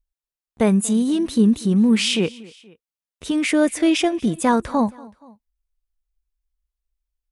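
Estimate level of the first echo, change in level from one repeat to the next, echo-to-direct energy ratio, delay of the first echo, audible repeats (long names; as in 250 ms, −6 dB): −22.5 dB, −5.0 dB, −21.5 dB, 237 ms, 2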